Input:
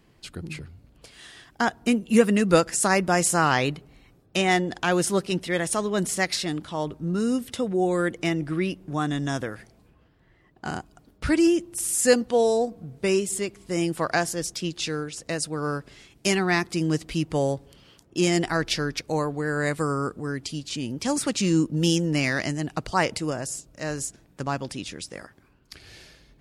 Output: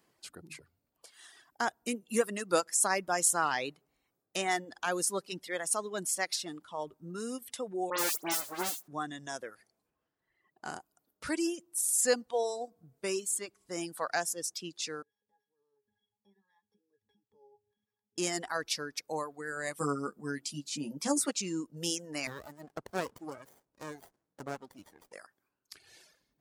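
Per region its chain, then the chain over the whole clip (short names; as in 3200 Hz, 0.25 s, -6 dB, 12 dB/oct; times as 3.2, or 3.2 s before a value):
7.9–8.88 half-waves squared off + tone controls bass -12 dB, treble +4 dB + dispersion highs, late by 89 ms, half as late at 3000 Hz
15.02–18.18 sample sorter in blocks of 8 samples + compressor 4:1, threshold -39 dBFS + octave resonator G#, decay 0.24 s
19.8–21.31 bell 200 Hz +9 dB 1.3 oct + doubler 14 ms -3.5 dB
22.27–25.13 high shelf 6200 Hz -6.5 dB + running maximum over 33 samples
whole clip: reverb removal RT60 1.8 s; HPF 1200 Hz 6 dB/oct; bell 2800 Hz -9.5 dB 1.9 oct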